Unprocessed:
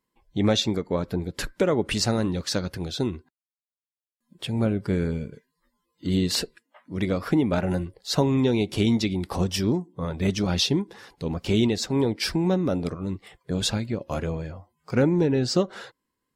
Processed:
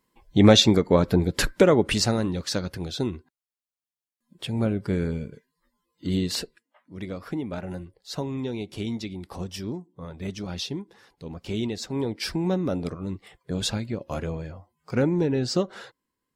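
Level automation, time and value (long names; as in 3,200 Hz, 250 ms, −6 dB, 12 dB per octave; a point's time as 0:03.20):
0:01.48 +7 dB
0:02.23 −1 dB
0:06.06 −1 dB
0:06.95 −9 dB
0:11.26 −9 dB
0:12.53 −2 dB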